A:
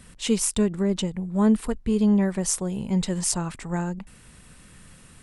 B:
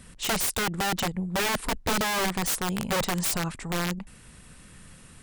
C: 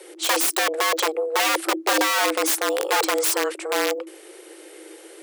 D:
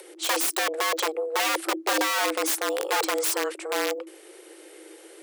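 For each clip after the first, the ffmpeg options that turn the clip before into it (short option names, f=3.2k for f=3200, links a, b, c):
-af "aeval=exprs='(mod(10.6*val(0)+1,2)-1)/10.6':c=same"
-af "afreqshift=310,volume=5.5dB"
-af "acompressor=mode=upward:threshold=-41dB:ratio=2.5,volume=-4dB"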